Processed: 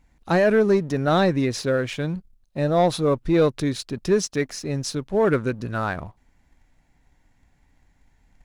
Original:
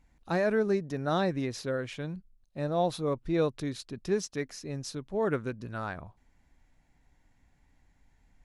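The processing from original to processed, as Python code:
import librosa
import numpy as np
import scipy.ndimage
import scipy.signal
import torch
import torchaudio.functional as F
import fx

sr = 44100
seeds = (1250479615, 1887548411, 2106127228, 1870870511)

y = fx.leveller(x, sr, passes=1)
y = y * librosa.db_to_amplitude(6.5)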